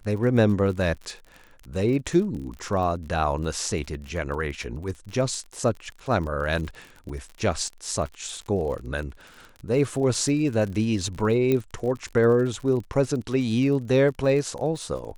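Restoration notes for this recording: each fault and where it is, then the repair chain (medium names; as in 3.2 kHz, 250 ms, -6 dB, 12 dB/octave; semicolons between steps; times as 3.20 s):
crackle 46 per s -33 dBFS
11.52 s: pop -12 dBFS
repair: de-click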